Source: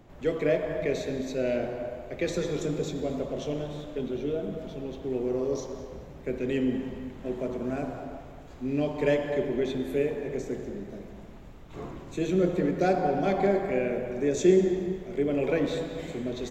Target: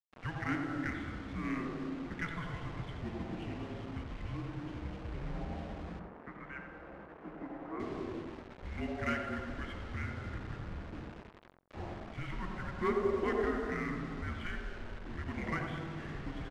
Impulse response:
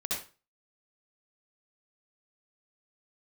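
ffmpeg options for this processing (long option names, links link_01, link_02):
-filter_complex "[0:a]aemphasis=mode=reproduction:type=cd,highpass=frequency=400:width_type=q:width=0.5412,highpass=frequency=400:width_type=q:width=1.307,lowpass=frequency=3400:width_type=q:width=0.5176,lowpass=frequency=3400:width_type=q:width=0.7071,lowpass=frequency=3400:width_type=q:width=1.932,afreqshift=-340,acrossover=split=430|1100[link_01][link_02][link_03];[link_01]acompressor=threshold=-41dB:ratio=10[link_04];[link_04][link_02][link_03]amix=inputs=3:normalize=0,acrusher=bits=7:mix=0:aa=0.000001,adynamicsmooth=sensitivity=6.5:basefreq=2400,asettb=1/sr,asplit=3[link_05][link_06][link_07];[link_05]atrim=end=5.994[link_08];[link_06]atrim=start=5.99:end=7.8,asetpts=PTS-STARTPTS,afade=type=in:duration=0.004:curve=qsin,afade=type=out:start_time=1.806:duration=0.004:curve=qsin,acrossover=split=220 2000:gain=0.141 1 0.1[link_09][link_10][link_11];[link_09][link_10][link_11]amix=inputs=3:normalize=0[link_12];[link_07]atrim=start=7.796[link_13];[link_08][link_12]acrossfade=duration=0.004:curve1=hsin:curve2=qsin[link_14];[link_14][link_13]acrossfade=duration=0.004:curve1=qsin:curve2=hsin,asplit=2[link_15][link_16];[link_16]adelay=90,lowpass=frequency=1300:poles=1,volume=-4dB,asplit=2[link_17][link_18];[link_18]adelay=90,lowpass=frequency=1300:poles=1,volume=0.23,asplit=2[link_19][link_20];[link_20]adelay=90,lowpass=frequency=1300:poles=1,volume=0.23[link_21];[link_17][link_19][link_21]amix=inputs=3:normalize=0[link_22];[link_15][link_22]amix=inputs=2:normalize=0,volume=1.5dB"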